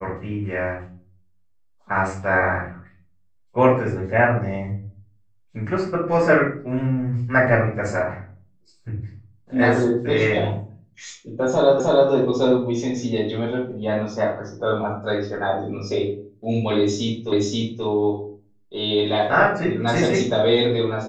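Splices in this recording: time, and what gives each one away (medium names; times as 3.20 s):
11.80 s: repeat of the last 0.31 s
17.32 s: repeat of the last 0.53 s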